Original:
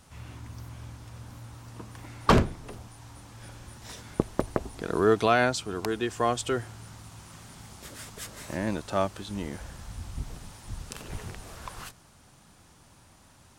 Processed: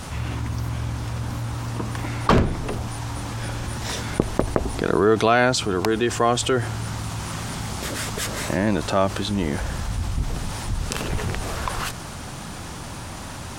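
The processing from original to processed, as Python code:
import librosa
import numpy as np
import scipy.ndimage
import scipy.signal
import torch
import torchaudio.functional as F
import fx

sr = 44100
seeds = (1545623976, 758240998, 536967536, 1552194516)

y = fx.high_shelf(x, sr, hz=6700.0, db=-5.5)
y = fx.env_flatten(y, sr, amount_pct=50)
y = y * 10.0 ** (2.0 / 20.0)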